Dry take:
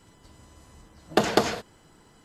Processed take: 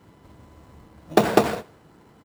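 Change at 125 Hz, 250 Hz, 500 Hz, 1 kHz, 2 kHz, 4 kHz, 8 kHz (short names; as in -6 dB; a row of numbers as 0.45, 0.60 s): +5.0, +5.0, +5.0, +4.0, +1.0, -2.5, -0.5 dB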